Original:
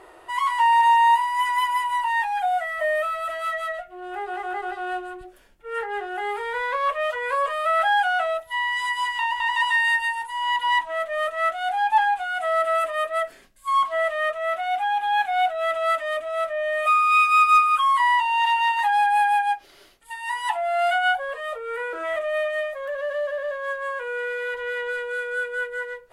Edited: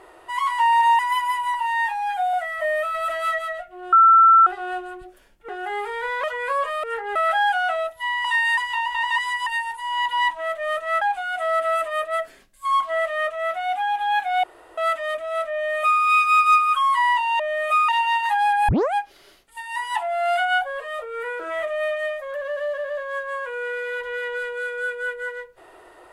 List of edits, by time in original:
0.99–1.45 s: delete
2.00–2.53 s: stretch 1.5×
3.14–3.58 s: gain +3.5 dB
4.12–4.66 s: bleep 1.34 kHz -9 dBFS
5.68–6.00 s: move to 7.66 s
6.75–7.06 s: delete
8.75–9.03 s: swap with 9.64–9.97 s
11.52–12.04 s: delete
15.46–15.80 s: room tone
16.55–17.04 s: copy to 18.42 s
19.22 s: tape start 0.25 s

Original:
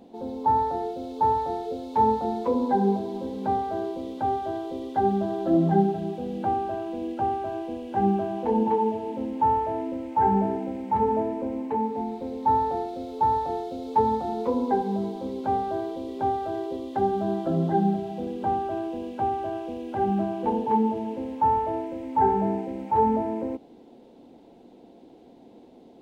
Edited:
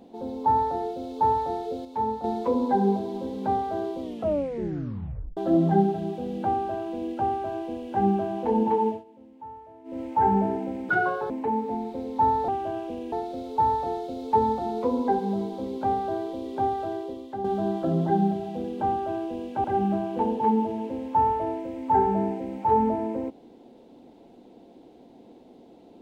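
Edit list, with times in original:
1.85–2.24 s: gain -6.5 dB
4.01 s: tape stop 1.36 s
8.88–10.00 s: dip -20 dB, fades 0.16 s
10.89–11.57 s: speed 165%
16.45–17.07 s: fade out, to -10 dB
19.27–19.91 s: move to 12.75 s

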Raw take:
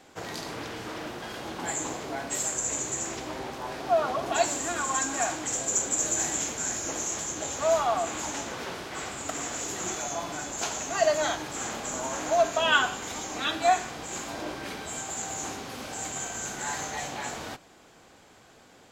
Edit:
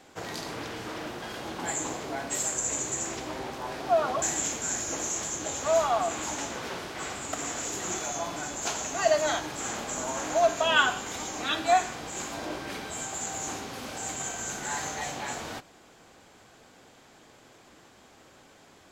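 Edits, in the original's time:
4.22–6.18 s: delete

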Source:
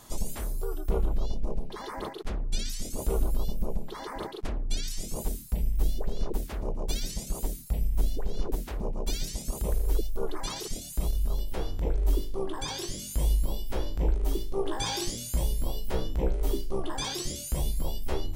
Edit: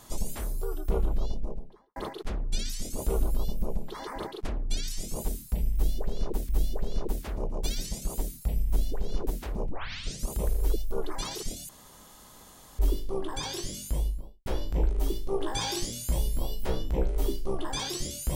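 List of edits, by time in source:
1.19–1.96 s: studio fade out
5.74–6.49 s: loop, 2 plays
8.94 s: tape start 0.58 s
10.94–12.04 s: room tone
13.00–13.71 s: studio fade out

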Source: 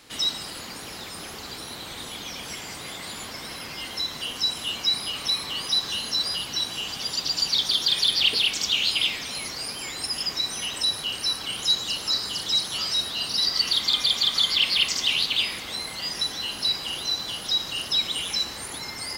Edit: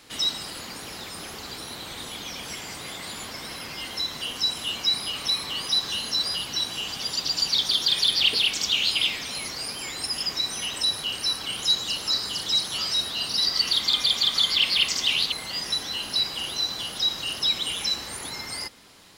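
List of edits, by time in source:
15.32–15.81 s: delete

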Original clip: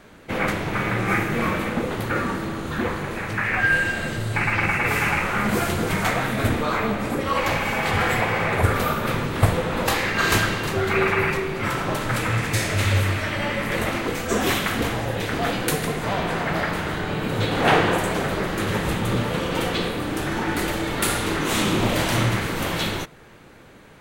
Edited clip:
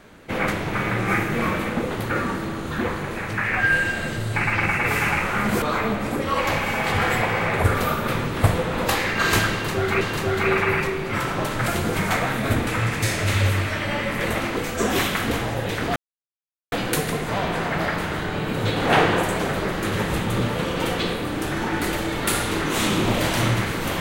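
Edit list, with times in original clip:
5.62–6.61 s: move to 12.18 s
10.51–11.00 s: loop, 2 plays
15.47 s: insert silence 0.76 s

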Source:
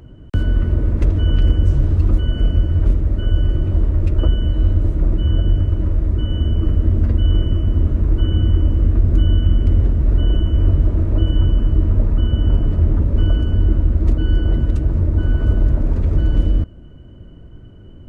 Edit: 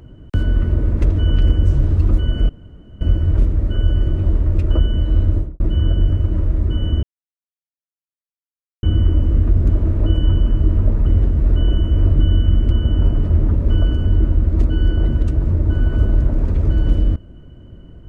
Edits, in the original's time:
2.49 s: insert room tone 0.52 s
4.80–5.08 s: studio fade out
6.51–8.31 s: mute
9.17–9.69 s: swap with 10.81–12.19 s

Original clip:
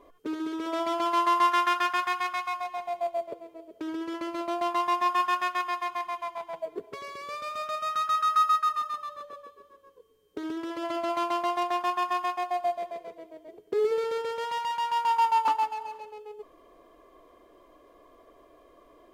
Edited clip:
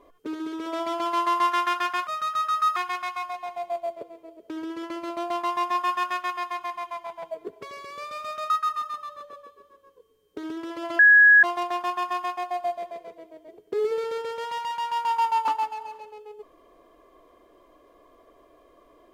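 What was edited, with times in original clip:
7.81–8.50 s: move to 2.07 s
10.99–11.43 s: bleep 1.67 kHz -10.5 dBFS

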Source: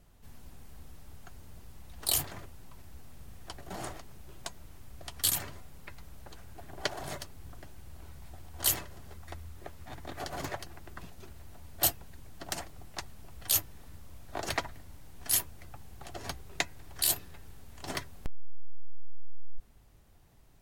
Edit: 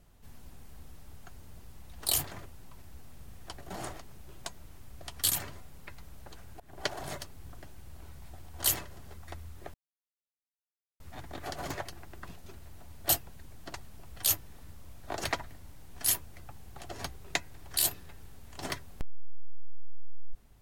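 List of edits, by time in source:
6.60–6.92 s: fade in equal-power, from -19.5 dB
9.74 s: insert silence 1.26 s
12.48–12.99 s: delete

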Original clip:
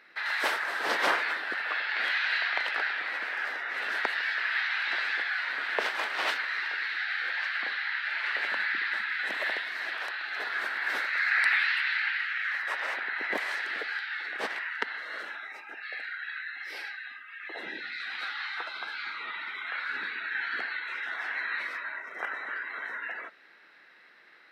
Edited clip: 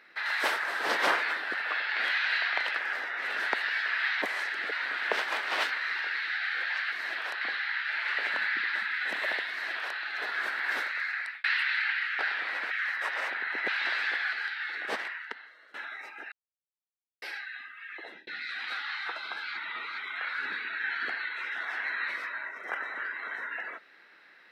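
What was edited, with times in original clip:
2.78–3.30 s: move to 12.37 s
4.74–5.39 s: swap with 13.34–13.84 s
9.68–10.17 s: copy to 7.59 s
10.90–11.62 s: fade out
14.50–15.25 s: fade out quadratic, to -21 dB
15.83–16.73 s: mute
17.40–17.78 s: fade out
19.08–19.49 s: reverse

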